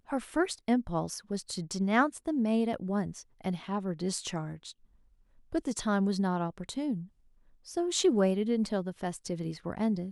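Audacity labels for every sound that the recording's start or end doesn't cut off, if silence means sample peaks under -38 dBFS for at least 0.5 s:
5.530000	7.030000	sound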